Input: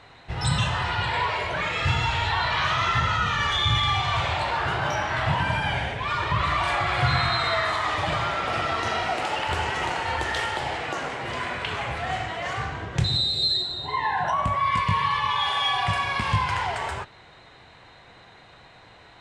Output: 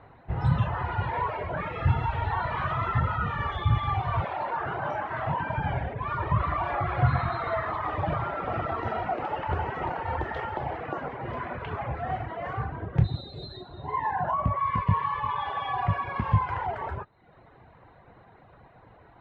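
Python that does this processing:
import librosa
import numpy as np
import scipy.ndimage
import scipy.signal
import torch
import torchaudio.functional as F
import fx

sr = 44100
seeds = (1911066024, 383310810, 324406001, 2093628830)

y = fx.highpass(x, sr, hz=290.0, slope=6, at=(4.24, 5.58))
y = fx.dereverb_blind(y, sr, rt60_s=0.72)
y = scipy.signal.sosfilt(scipy.signal.butter(2, 1200.0, 'lowpass', fs=sr, output='sos'), y)
y = fx.peak_eq(y, sr, hz=93.0, db=2.5, octaves=3.0)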